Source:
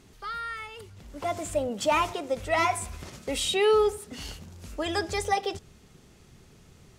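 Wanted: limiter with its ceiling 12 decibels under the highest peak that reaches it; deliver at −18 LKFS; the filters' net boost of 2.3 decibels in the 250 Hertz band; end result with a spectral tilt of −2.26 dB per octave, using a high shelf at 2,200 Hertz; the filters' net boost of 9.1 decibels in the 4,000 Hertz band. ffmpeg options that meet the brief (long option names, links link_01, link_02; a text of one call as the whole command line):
ffmpeg -i in.wav -af "equalizer=frequency=250:width_type=o:gain=3,highshelf=frequency=2200:gain=8,equalizer=frequency=4000:width_type=o:gain=4,volume=12.5dB,alimiter=limit=-8.5dB:level=0:latency=1" out.wav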